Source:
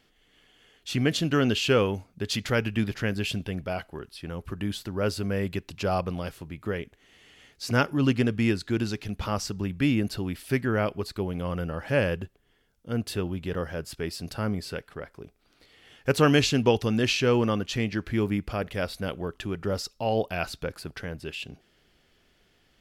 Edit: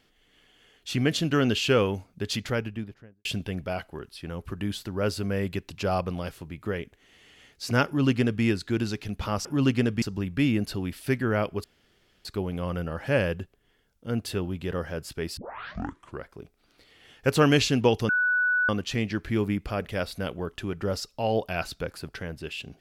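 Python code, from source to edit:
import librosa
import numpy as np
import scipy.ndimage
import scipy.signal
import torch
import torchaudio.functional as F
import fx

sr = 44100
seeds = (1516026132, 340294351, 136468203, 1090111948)

y = fx.studio_fade_out(x, sr, start_s=2.22, length_s=1.03)
y = fx.edit(y, sr, fx.duplicate(start_s=7.86, length_s=0.57, to_s=9.45),
    fx.insert_room_tone(at_s=11.07, length_s=0.61),
    fx.tape_start(start_s=14.19, length_s=0.89),
    fx.bleep(start_s=16.91, length_s=0.6, hz=1480.0, db=-20.5), tone=tone)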